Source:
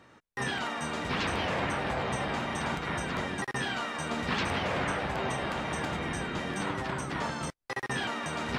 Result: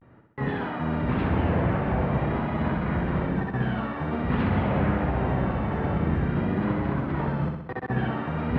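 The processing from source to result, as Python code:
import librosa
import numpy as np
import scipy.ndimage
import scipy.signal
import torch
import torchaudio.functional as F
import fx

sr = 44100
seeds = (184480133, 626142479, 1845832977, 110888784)

p1 = fx.highpass(x, sr, hz=110.0, slope=6)
p2 = fx.riaa(p1, sr, side='playback')
p3 = fx.vibrato(p2, sr, rate_hz=0.48, depth_cents=81.0)
p4 = fx.quant_dither(p3, sr, seeds[0], bits=6, dither='none')
p5 = p3 + F.gain(torch.from_numpy(p4), -11.5).numpy()
p6 = fx.air_absorb(p5, sr, metres=430.0)
y = p6 + fx.room_flutter(p6, sr, wall_m=10.8, rt60_s=0.8, dry=0)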